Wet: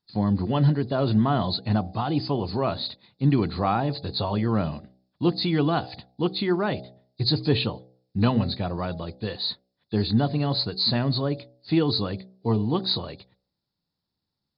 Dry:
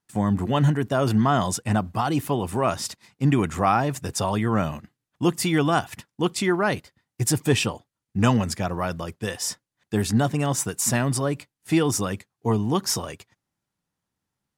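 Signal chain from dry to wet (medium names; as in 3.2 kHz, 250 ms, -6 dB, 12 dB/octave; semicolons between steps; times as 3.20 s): knee-point frequency compression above 3.4 kHz 4:1; peaking EQ 1.8 kHz -7.5 dB 2 oct; de-hum 63.06 Hz, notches 13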